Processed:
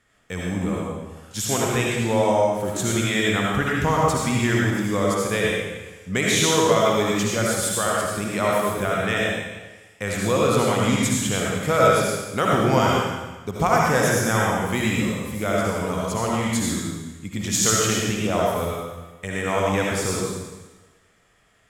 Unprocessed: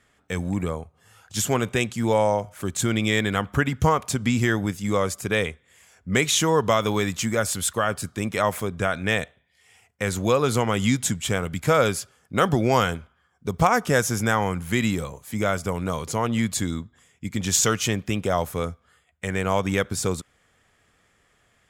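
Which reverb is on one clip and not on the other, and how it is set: digital reverb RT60 1.2 s, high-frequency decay 1×, pre-delay 35 ms, DRR -4 dB; gain -3 dB

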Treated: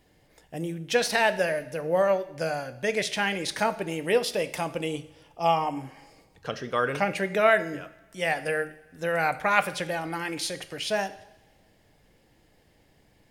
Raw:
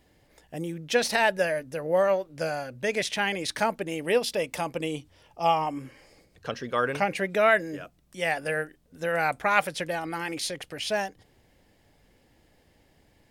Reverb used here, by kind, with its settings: two-slope reverb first 0.68 s, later 1.9 s, from -17 dB, DRR 10.5 dB

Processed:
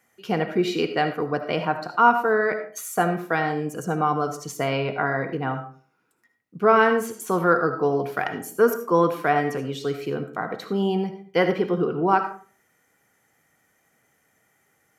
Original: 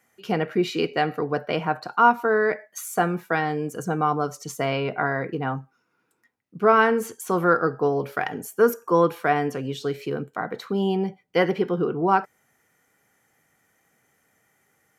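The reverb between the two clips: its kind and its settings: digital reverb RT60 0.41 s, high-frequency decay 0.55×, pre-delay 35 ms, DRR 8.5 dB

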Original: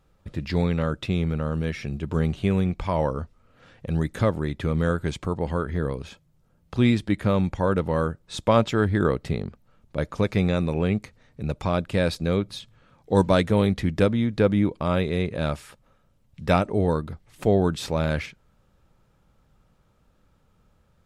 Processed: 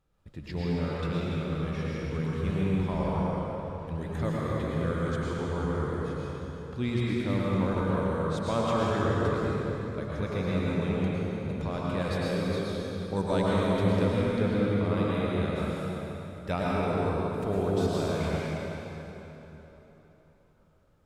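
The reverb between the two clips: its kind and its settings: plate-style reverb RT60 3.8 s, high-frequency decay 0.75×, pre-delay 90 ms, DRR -6.5 dB; gain -11.5 dB

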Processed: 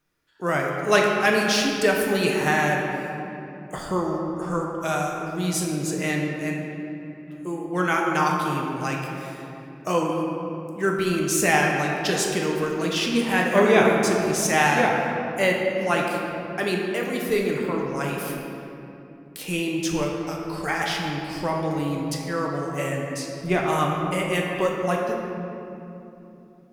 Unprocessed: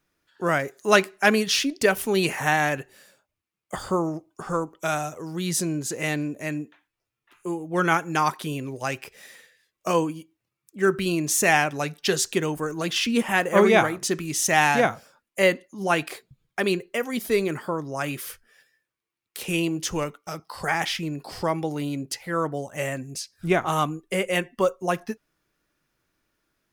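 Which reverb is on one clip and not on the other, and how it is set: shoebox room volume 140 m³, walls hard, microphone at 0.47 m; gain -2.5 dB

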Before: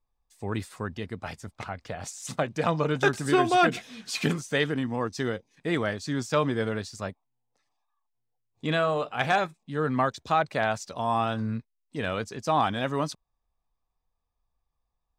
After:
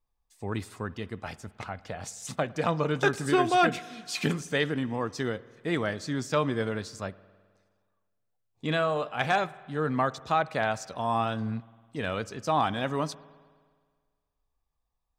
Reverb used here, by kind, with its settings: spring tank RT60 1.7 s, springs 52 ms, chirp 70 ms, DRR 19 dB; gain -1.5 dB

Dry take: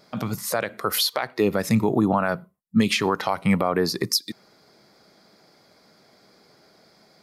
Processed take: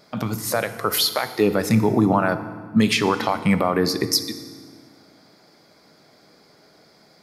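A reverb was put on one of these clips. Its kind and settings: FDN reverb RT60 1.6 s, low-frequency decay 1.5×, high-frequency decay 0.85×, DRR 10 dB; gain +2 dB

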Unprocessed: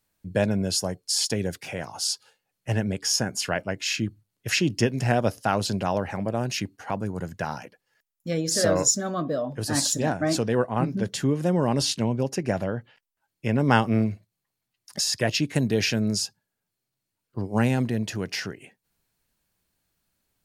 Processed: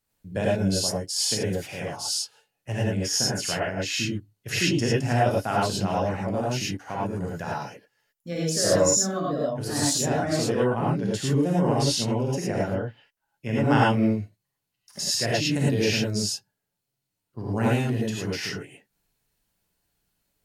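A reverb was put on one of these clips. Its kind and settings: non-linear reverb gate 0.13 s rising, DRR -5 dB; gain -6 dB

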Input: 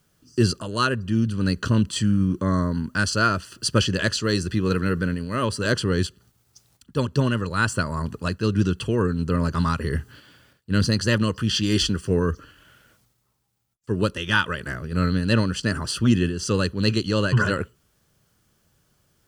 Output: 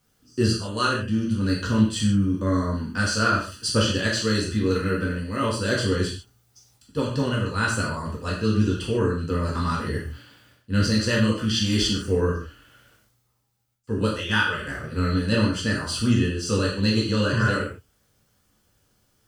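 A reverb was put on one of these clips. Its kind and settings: non-linear reverb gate 0.18 s falling, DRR -4.5 dB; gain -6 dB

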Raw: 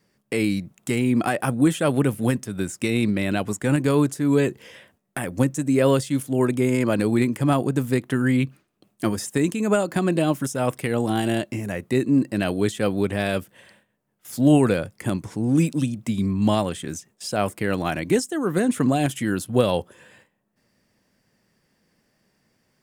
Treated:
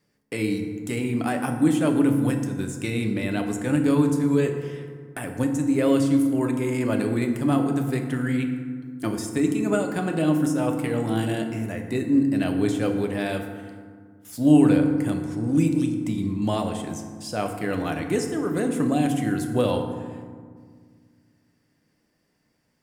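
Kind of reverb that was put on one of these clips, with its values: FDN reverb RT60 1.8 s, low-frequency decay 1.5×, high-frequency decay 0.45×, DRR 3.5 dB; gain -5 dB

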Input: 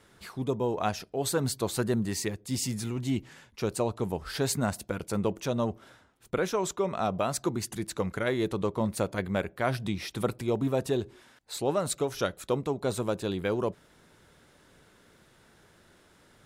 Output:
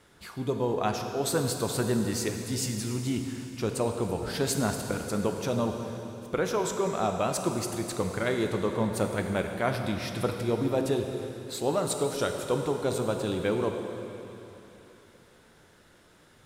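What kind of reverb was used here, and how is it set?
plate-style reverb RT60 3.3 s, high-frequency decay 1×, DRR 4 dB

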